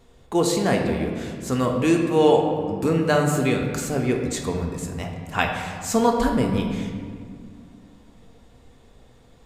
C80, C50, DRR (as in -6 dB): 5.5 dB, 4.0 dB, 1.0 dB